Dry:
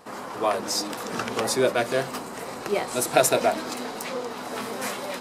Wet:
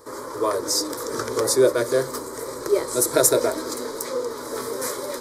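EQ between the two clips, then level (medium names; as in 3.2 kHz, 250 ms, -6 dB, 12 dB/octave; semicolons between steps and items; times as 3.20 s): peaking EQ 1.5 kHz -8 dB 1.2 oct; static phaser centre 740 Hz, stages 6; +7.5 dB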